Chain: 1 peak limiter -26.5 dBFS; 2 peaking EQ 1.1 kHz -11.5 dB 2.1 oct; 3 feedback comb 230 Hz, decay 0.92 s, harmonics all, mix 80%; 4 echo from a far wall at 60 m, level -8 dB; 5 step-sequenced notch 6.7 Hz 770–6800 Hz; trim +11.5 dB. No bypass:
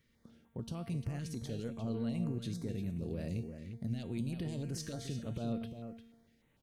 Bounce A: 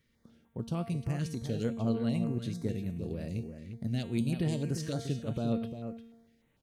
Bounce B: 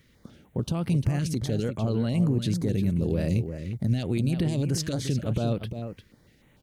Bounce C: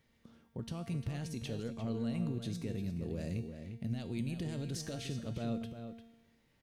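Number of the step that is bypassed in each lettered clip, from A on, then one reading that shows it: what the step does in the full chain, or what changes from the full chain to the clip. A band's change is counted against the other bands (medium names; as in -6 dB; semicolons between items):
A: 1, mean gain reduction 3.5 dB; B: 3, loudness change +12.5 LU; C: 5, 2 kHz band +2.5 dB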